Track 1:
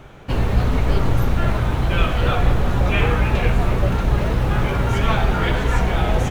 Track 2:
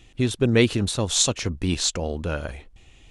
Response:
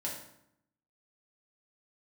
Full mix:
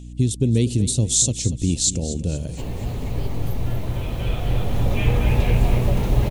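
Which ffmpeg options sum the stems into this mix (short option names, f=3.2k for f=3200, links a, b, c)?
-filter_complex "[0:a]highshelf=f=10k:g=11,acrossover=split=170[a][b];[b]acompressor=threshold=-24dB:ratio=2[c];[a][c]amix=inputs=2:normalize=0,adelay=2050,volume=-1dB,asplit=2[d][e];[e]volume=-7dB[f];[1:a]equalizer=f=125:t=o:w=1:g=10,equalizer=f=250:t=o:w=1:g=4,equalizer=f=1k:t=o:w=1:g=-12,equalizer=f=2k:t=o:w=1:g=-7,equalizer=f=8k:t=o:w=1:g=11,acompressor=threshold=-14dB:ratio=3,volume=-1dB,asplit=3[g][h][i];[h]volume=-14dB[j];[i]apad=whole_len=368365[k];[d][k]sidechaincompress=threshold=-51dB:ratio=8:attack=16:release=1350[l];[f][j]amix=inputs=2:normalize=0,aecho=0:1:238|476|714|952|1190|1428:1|0.45|0.202|0.0911|0.041|0.0185[m];[l][g][m]amix=inputs=3:normalize=0,equalizer=f=1.4k:w=1.9:g=-12,aeval=exprs='val(0)+0.0178*(sin(2*PI*60*n/s)+sin(2*PI*2*60*n/s)/2+sin(2*PI*3*60*n/s)/3+sin(2*PI*4*60*n/s)/4+sin(2*PI*5*60*n/s)/5)':c=same"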